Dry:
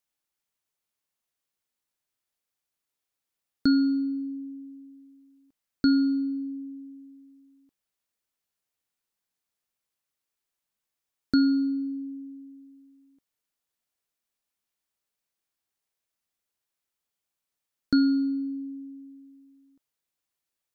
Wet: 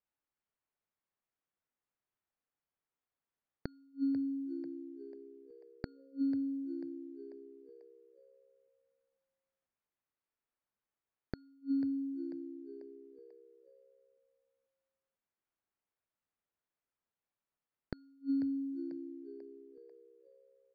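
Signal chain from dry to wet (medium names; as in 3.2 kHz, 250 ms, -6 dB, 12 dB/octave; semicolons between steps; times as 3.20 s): inverted gate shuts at -20 dBFS, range -37 dB; level-controlled noise filter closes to 1.8 kHz, open at -32.5 dBFS; frequency-shifting echo 492 ms, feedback 44%, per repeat +66 Hz, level -12 dB; trim -2.5 dB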